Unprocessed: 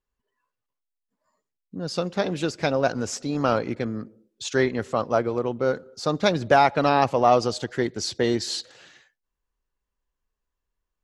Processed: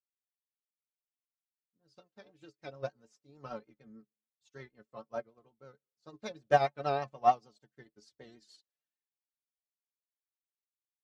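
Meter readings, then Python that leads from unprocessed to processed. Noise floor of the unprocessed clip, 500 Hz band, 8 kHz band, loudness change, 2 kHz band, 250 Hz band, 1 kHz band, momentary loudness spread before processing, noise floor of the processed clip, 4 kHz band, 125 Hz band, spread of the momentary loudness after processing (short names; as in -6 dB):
-84 dBFS, -14.0 dB, under -25 dB, -9.5 dB, -15.0 dB, -24.0 dB, -9.5 dB, 11 LU, under -85 dBFS, -20.5 dB, -17.0 dB, 23 LU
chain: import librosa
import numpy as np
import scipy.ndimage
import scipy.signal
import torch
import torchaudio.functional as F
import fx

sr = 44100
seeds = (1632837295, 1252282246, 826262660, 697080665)

y = fx.stiff_resonator(x, sr, f0_hz=65.0, decay_s=0.27, stiffness=0.03)
y = fx.vibrato(y, sr, rate_hz=6.6, depth_cents=63.0)
y = fx.upward_expand(y, sr, threshold_db=-47.0, expansion=2.5)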